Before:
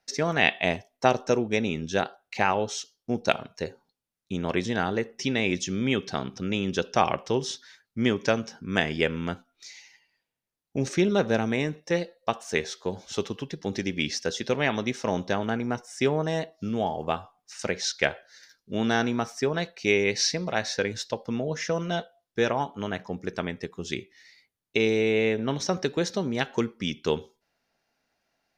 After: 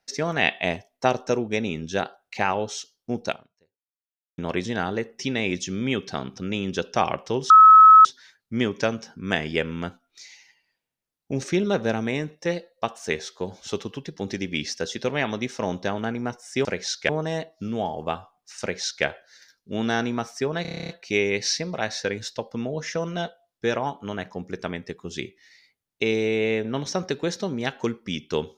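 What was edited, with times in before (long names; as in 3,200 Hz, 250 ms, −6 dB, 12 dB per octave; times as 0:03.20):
0:03.25–0:04.38: fade out exponential
0:07.50: insert tone 1,290 Hz −6.5 dBFS 0.55 s
0:17.62–0:18.06: duplicate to 0:16.10
0:19.63: stutter 0.03 s, 10 plays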